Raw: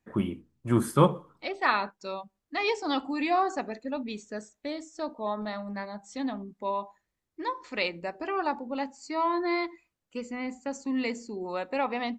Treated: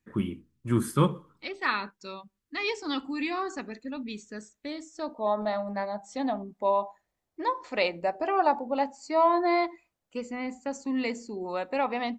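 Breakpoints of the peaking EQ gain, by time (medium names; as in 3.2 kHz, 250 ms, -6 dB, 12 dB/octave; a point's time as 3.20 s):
peaking EQ 690 Hz 0.85 oct
4.32 s -12 dB
5.02 s -1.5 dB
5.40 s +10 dB
9.65 s +10 dB
10.47 s +2 dB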